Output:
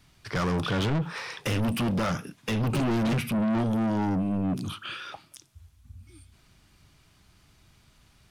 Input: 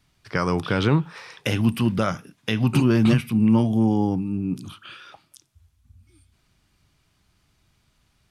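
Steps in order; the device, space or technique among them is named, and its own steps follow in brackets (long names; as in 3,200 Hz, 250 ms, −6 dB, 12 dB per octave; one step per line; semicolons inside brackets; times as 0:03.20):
saturation between pre-emphasis and de-emphasis (high-shelf EQ 6,100 Hz +11 dB; soft clipping −29 dBFS, distortion −4 dB; high-shelf EQ 6,100 Hz −11 dB)
level +5.5 dB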